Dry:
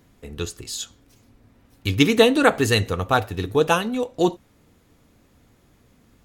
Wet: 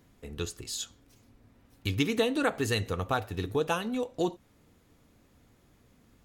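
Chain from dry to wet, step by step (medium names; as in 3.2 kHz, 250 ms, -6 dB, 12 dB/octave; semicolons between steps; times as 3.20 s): compression 2:1, threshold -23 dBFS, peak gain reduction 8 dB; trim -5 dB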